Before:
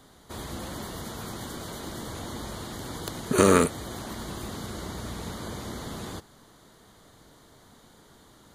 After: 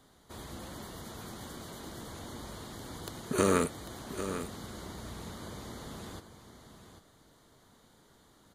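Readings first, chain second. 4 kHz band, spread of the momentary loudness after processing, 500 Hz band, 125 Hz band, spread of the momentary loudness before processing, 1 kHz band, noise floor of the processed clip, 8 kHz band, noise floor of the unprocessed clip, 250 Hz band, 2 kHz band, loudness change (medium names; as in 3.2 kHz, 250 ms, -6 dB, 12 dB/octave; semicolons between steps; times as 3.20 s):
-7.0 dB, 22 LU, -7.0 dB, -7.0 dB, 15 LU, -7.0 dB, -63 dBFS, -7.0 dB, -56 dBFS, -7.0 dB, -7.0 dB, -7.0 dB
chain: delay 795 ms -10.5 dB; trim -7.5 dB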